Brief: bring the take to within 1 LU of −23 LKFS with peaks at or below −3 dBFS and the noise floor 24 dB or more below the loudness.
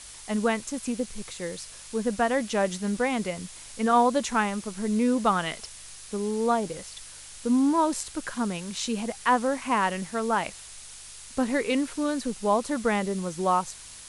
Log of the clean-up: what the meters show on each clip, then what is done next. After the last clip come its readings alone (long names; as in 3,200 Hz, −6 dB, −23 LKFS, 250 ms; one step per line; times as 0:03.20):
mains hum 50 Hz; hum harmonics up to 150 Hz; level of the hum −59 dBFS; background noise floor −45 dBFS; target noise floor −51 dBFS; integrated loudness −27.0 LKFS; sample peak −10.5 dBFS; target loudness −23.0 LKFS
→ hum removal 50 Hz, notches 3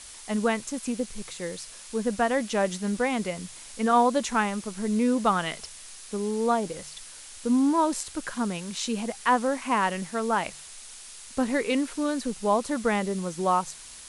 mains hum none found; background noise floor −45 dBFS; target noise floor −51 dBFS
→ noise reduction from a noise print 6 dB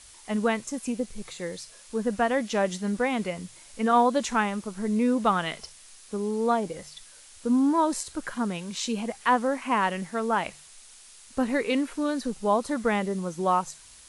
background noise floor −51 dBFS; integrated loudness −27.0 LKFS; sample peak −11.0 dBFS; target loudness −23.0 LKFS
→ level +4 dB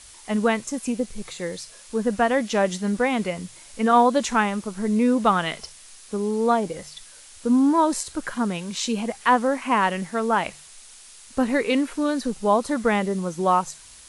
integrated loudness −23.0 LKFS; sample peak −7.0 dBFS; background noise floor −47 dBFS